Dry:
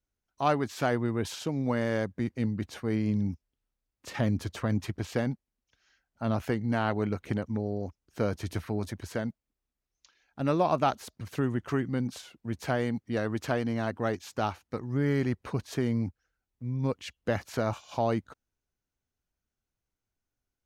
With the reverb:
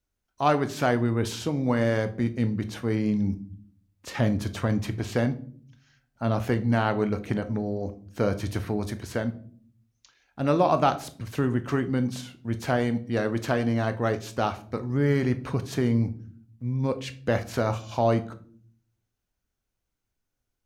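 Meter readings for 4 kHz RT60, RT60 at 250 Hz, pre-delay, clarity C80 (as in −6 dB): 0.35 s, 0.85 s, 16 ms, 20.0 dB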